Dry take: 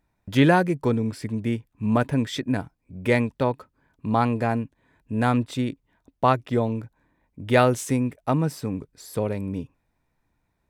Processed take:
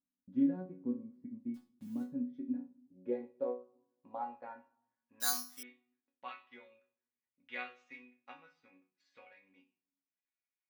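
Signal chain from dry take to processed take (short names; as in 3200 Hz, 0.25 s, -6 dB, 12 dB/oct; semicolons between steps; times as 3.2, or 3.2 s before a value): steep low-pass 6500 Hz; transient shaper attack +5 dB, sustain -10 dB; band-pass sweep 230 Hz -> 2300 Hz, 2.26–5.94; 1.54–2.07 requantised 8-bit, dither none; resonator bank F#3 sus4, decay 0.32 s; on a send at -12 dB: reverb RT60 0.80 s, pre-delay 4 ms; 5.2–5.63 on the sum: careless resampling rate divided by 8×, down none, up zero stuff; gain +1 dB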